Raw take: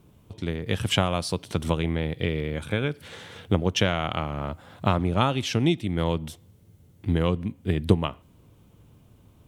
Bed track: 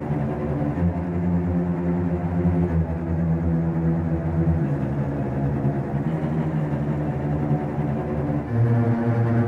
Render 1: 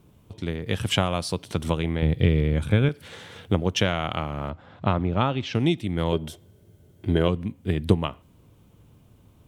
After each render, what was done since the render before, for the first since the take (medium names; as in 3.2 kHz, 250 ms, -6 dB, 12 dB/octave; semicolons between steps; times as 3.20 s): 2.02–2.89 s: bass shelf 240 Hz +11.5 dB; 4.50–5.55 s: distance through air 170 m; 6.12–7.28 s: small resonant body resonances 390/610/1500/3200 Hz, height 11 dB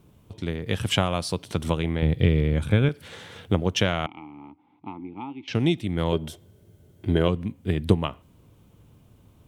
4.06–5.48 s: vowel filter u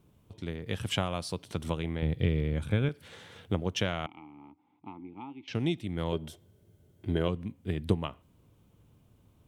trim -7.5 dB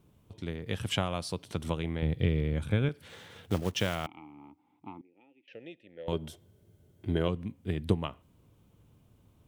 3.09–4.08 s: block-companded coder 5-bit; 5.01–6.08 s: vowel filter e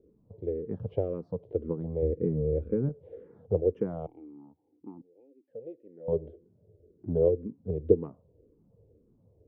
resonant low-pass 470 Hz, resonance Q 4.9; barber-pole phaser -1.9 Hz